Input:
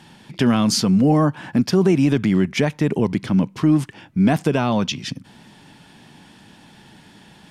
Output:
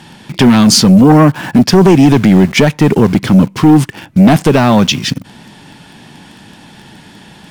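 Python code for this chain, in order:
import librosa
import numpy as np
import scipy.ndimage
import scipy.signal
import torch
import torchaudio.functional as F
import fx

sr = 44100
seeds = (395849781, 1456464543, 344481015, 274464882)

p1 = fx.quant_dither(x, sr, seeds[0], bits=6, dither='none')
p2 = x + (p1 * librosa.db_to_amplitude(-7.0))
y = fx.fold_sine(p2, sr, drive_db=6, ceiling_db=-1.5)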